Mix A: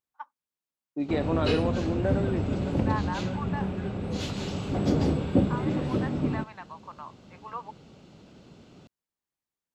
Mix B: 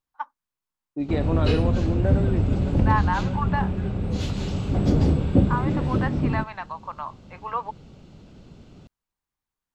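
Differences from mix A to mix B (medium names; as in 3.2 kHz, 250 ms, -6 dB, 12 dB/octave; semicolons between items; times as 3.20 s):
first voice +9.0 dB; master: remove high-pass 230 Hz 6 dB/octave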